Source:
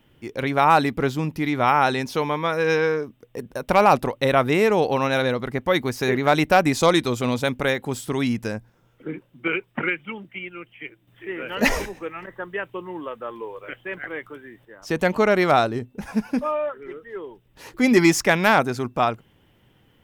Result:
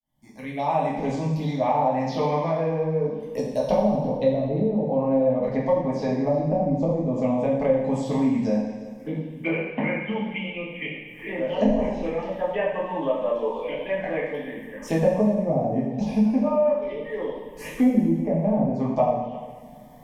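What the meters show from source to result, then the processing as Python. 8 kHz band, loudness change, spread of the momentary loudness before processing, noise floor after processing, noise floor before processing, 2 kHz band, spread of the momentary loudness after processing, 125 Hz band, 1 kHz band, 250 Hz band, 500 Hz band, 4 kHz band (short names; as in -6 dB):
under -10 dB, -3.0 dB, 18 LU, -42 dBFS, -60 dBFS, -11.0 dB, 11 LU, +1.0 dB, -6.0 dB, +1.0 dB, 0.0 dB, -12.0 dB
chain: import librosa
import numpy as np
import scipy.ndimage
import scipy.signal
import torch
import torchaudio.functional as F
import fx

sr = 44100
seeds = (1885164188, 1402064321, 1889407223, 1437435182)

y = fx.fade_in_head(x, sr, length_s=3.02)
y = fx.hum_notches(y, sr, base_hz=60, count=6)
y = fx.env_lowpass_down(y, sr, base_hz=300.0, full_db=-15.0)
y = fx.rider(y, sr, range_db=4, speed_s=0.5)
y = fx.env_phaser(y, sr, low_hz=460.0, high_hz=4300.0, full_db=-23.0)
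y = fx.fixed_phaser(y, sr, hz=370.0, stages=6)
y = y + 10.0 ** (-21.0 / 20.0) * np.pad(y, (int(351 * sr / 1000.0), 0))[:len(y)]
y = fx.rev_double_slope(y, sr, seeds[0], early_s=0.9, late_s=2.5, knee_db=-23, drr_db=-6.0)
y = fx.band_squash(y, sr, depth_pct=40)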